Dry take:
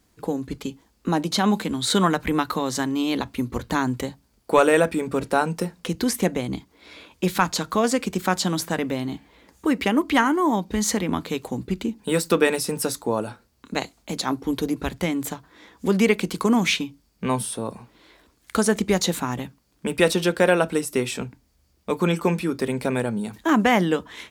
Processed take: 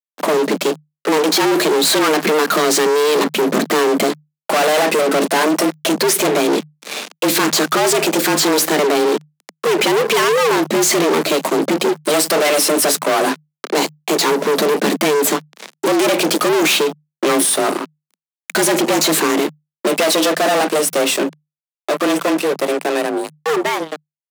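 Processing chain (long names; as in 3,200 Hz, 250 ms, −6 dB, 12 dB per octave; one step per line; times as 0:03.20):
fade-out on the ending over 6.22 s
fuzz pedal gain 41 dB, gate −43 dBFS
frequency shifter +150 Hz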